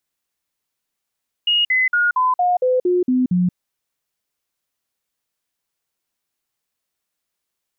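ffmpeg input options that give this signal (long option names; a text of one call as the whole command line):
ffmpeg -f lavfi -i "aevalsrc='0.211*clip(min(mod(t,0.23),0.18-mod(t,0.23))/0.005,0,1)*sin(2*PI*2870*pow(2,-floor(t/0.23)/2)*mod(t,0.23))':duration=2.07:sample_rate=44100" out.wav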